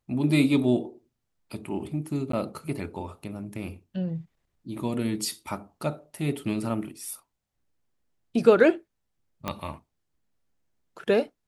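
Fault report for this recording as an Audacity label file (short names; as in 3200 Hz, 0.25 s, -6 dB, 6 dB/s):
2.320000	2.330000	gap 13 ms
9.480000	9.480000	pop -14 dBFS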